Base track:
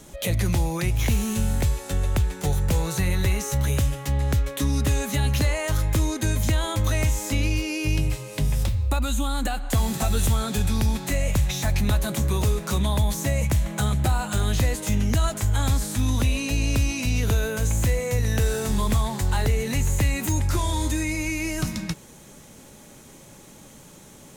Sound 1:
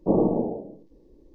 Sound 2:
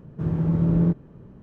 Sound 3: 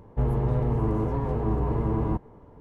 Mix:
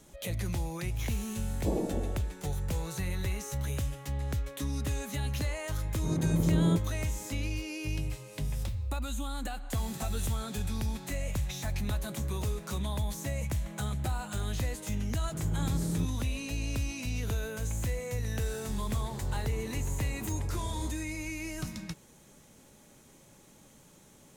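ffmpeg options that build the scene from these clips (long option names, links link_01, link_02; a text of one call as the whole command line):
ffmpeg -i bed.wav -i cue0.wav -i cue1.wav -i cue2.wav -filter_complex "[2:a]asplit=2[link_01][link_02];[0:a]volume=-10.5dB[link_03];[link_01]equalizer=frequency=440:width=0.34:gain=8[link_04];[1:a]atrim=end=1.34,asetpts=PTS-STARTPTS,volume=-11dB,afade=type=in:duration=0.004:curve=hsin,afade=type=out:start_time=1.336:duration=0.004:curve=hsin,adelay=1580[link_05];[link_04]atrim=end=1.42,asetpts=PTS-STARTPTS,volume=-11dB,afade=type=in:duration=0.004:curve=hsin,afade=type=out:start_time=1.416:duration=0.004:curve=hsin,adelay=257985S[link_06];[link_02]atrim=end=1.42,asetpts=PTS-STARTPTS,volume=-12.5dB,afade=type=in:duration=0.004:curve=hsin,afade=type=out:start_time=1.416:duration=0.004:curve=hsin,adelay=15130[link_07];[3:a]atrim=end=2.6,asetpts=PTS-STARTPTS,volume=-17.5dB,afade=type=in:duration=0.004:curve=hsin,afade=type=out:start_time=2.596:duration=0.004:curve=hsin,adelay=18740[link_08];[link_03][link_05][link_06][link_07][link_08]amix=inputs=5:normalize=0" out.wav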